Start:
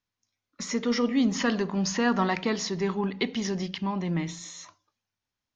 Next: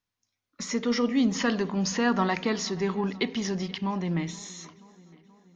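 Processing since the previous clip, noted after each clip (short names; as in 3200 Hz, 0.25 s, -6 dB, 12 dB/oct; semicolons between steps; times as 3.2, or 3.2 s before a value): darkening echo 0.479 s, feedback 62%, low-pass 4500 Hz, level -22 dB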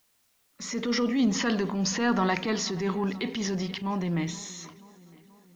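transient shaper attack -8 dB, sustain +2 dB; added noise white -70 dBFS; gain +1 dB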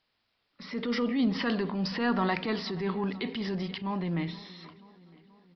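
downsampling 11025 Hz; gain -2.5 dB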